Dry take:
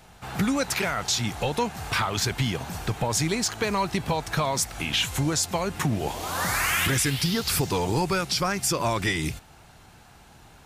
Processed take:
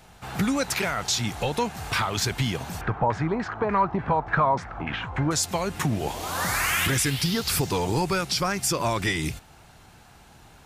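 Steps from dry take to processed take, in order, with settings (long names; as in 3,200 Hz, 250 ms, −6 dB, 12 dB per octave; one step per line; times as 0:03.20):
0:02.81–0:05.31: auto-filter low-pass saw down 3.4 Hz 840–1,900 Hz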